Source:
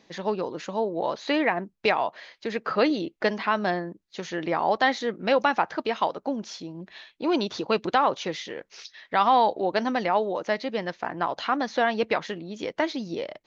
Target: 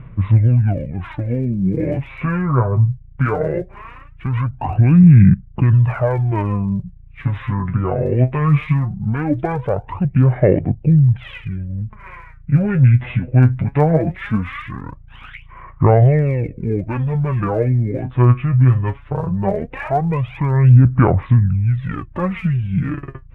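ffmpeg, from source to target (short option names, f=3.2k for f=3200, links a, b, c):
-af "lowpass=f=4.5k:w=0.5412,lowpass=f=4.5k:w=1.3066,lowshelf=f=330:t=q:w=1.5:g=13,alimiter=limit=-15dB:level=0:latency=1:release=33,aphaser=in_gain=1:out_gain=1:delay=4.7:decay=0.65:speed=0.33:type=sinusoidal,aeval=exprs='val(0)+0.00631*(sin(2*PI*50*n/s)+sin(2*PI*2*50*n/s)/2+sin(2*PI*3*50*n/s)/3+sin(2*PI*4*50*n/s)/4+sin(2*PI*5*50*n/s)/5)':c=same,asetrate=25442,aresample=44100,volume=4.5dB"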